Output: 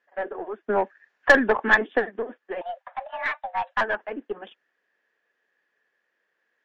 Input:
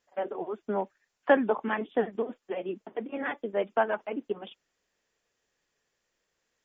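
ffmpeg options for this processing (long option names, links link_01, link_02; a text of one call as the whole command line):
ffmpeg -i in.wav -filter_complex "[0:a]highpass=280,lowpass=2700,asettb=1/sr,asplit=3[link_01][link_02][link_03];[link_01]atrim=end=2.614[link_04];[link_02]atrim=start=2.61:end=3.81,asetpts=PTS-STARTPTS,afade=type=in:duration=0.004:curve=qsin,afade=type=out:start_time=1.196:duration=0.004:curve=qsin,afreqshift=330[link_05];[link_03]atrim=start=3.806[link_06];[link_04][link_05]acrossfade=duration=0.004:curve1=hsin:curve2=qsin[link_07];[link_07][link_06]acrossfade=duration=0.004:curve1=qsin:curve2=hsin,asoftclip=type=tanh:threshold=-20.5dB,equalizer=frequency=1700:width=4.7:gain=12.5,aeval=exprs='0.266*(cos(1*acos(clip(val(0)/0.266,-1,1)))-cos(1*PI/2))+0.0211*(cos(4*acos(clip(val(0)/0.266,-1,1)))-cos(4*PI/2))':channel_layout=same,asplit=3[link_08][link_09][link_10];[link_08]afade=type=out:start_time=0.68:duration=0.02[link_11];[link_09]acontrast=52,afade=type=in:start_time=0.68:duration=0.02,afade=type=out:start_time=1.98:duration=0.02[link_12];[link_10]afade=type=in:start_time=1.98:duration=0.02[link_13];[link_11][link_12][link_13]amix=inputs=3:normalize=0,volume=2.5dB" out.wav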